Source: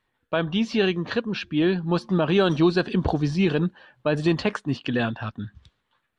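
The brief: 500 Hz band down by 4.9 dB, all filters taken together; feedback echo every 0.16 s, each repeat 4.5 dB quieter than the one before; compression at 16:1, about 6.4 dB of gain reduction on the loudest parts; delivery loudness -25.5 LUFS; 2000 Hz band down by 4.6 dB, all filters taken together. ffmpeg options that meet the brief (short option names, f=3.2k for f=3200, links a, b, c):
-af "equalizer=f=500:t=o:g=-7,equalizer=f=2k:t=o:g=-6,acompressor=threshold=-24dB:ratio=16,aecho=1:1:160|320|480|640|800|960|1120|1280|1440:0.596|0.357|0.214|0.129|0.0772|0.0463|0.0278|0.0167|0.01,volume=3.5dB"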